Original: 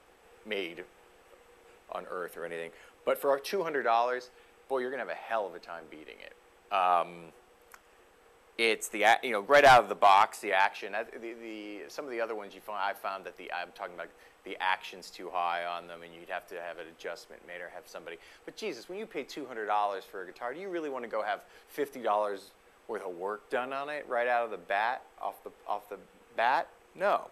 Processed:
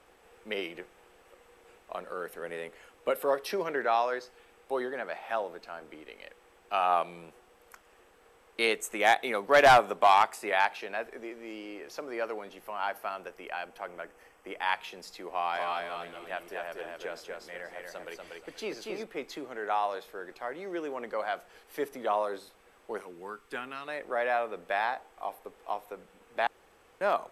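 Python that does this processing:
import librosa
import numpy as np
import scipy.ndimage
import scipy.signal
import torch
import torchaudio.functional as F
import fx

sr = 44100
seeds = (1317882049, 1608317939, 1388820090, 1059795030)

y = fx.peak_eq(x, sr, hz=3900.0, db=fx.line((12.49, -5.0), (14.62, -14.0)), octaves=0.3, at=(12.49, 14.62), fade=0.02)
y = fx.echo_feedback(y, sr, ms=239, feedback_pct=26, wet_db=-3.0, at=(15.53, 19.02), fade=0.02)
y = fx.peak_eq(y, sr, hz=610.0, db=-14.5, octaves=0.98, at=(23.0, 23.88))
y = fx.edit(y, sr, fx.room_tone_fill(start_s=26.47, length_s=0.54), tone=tone)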